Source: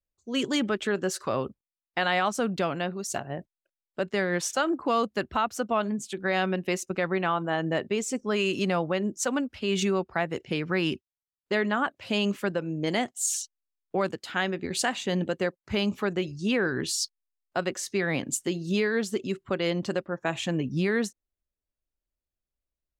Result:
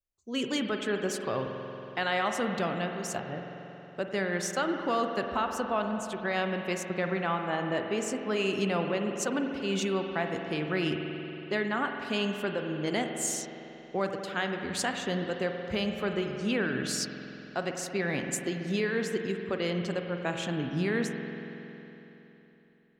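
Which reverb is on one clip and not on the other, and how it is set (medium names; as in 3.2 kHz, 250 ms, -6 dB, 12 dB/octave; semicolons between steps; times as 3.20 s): spring tank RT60 3.5 s, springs 46 ms, chirp 75 ms, DRR 4 dB; trim -4 dB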